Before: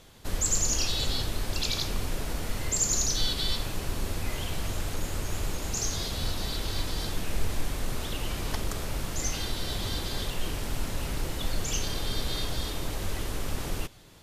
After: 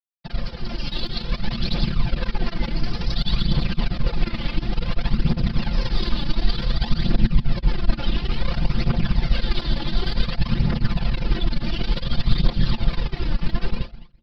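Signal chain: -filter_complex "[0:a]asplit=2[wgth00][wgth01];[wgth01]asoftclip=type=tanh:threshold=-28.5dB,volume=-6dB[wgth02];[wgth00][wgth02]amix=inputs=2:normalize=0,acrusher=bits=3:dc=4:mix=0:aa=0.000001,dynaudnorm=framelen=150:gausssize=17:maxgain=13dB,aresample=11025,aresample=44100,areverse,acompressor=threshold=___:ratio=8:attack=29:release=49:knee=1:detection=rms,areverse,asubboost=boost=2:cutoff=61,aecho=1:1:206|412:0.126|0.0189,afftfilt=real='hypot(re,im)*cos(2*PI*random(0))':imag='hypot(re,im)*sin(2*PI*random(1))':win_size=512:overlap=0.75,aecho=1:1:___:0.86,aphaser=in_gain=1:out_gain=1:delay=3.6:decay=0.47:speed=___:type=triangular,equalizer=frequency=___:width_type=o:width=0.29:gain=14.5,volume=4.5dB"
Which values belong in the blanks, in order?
-29dB, 5.8, 0.56, 230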